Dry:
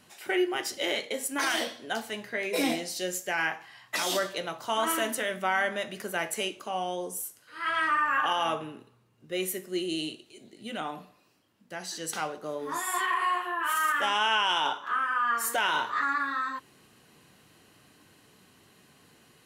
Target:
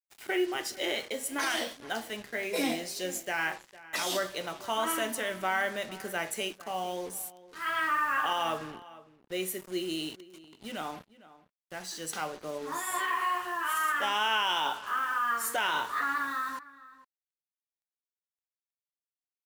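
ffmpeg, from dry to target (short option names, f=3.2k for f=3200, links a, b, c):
-filter_complex "[0:a]acrusher=bits=6:mix=0:aa=0.5,asplit=2[a][b];[b]adelay=454.8,volume=-18dB,highshelf=f=4k:g=-10.2[c];[a][c]amix=inputs=2:normalize=0,volume=-2.5dB"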